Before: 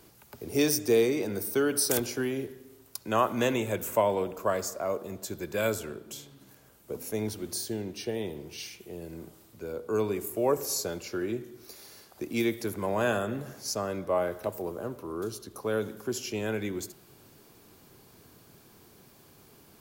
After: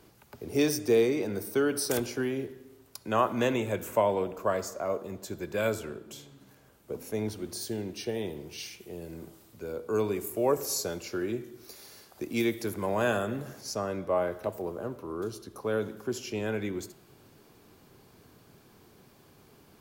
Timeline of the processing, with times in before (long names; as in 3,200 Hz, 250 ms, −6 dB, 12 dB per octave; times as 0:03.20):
0:07.61–0:13.61: high-shelf EQ 4,600 Hz +6.5 dB
whole clip: high-shelf EQ 5,300 Hz −7.5 dB; hum removal 332.1 Hz, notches 35